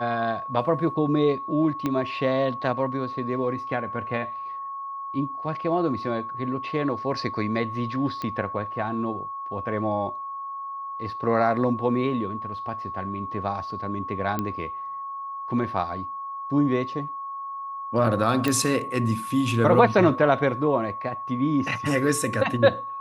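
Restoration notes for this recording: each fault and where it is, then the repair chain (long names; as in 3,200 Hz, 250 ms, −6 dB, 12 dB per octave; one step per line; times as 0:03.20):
whistle 1,100 Hz −31 dBFS
0:01.86: click −13 dBFS
0:08.22: click −18 dBFS
0:14.39: click −13 dBFS
0:18.48: click −10 dBFS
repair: click removal
notch filter 1,100 Hz, Q 30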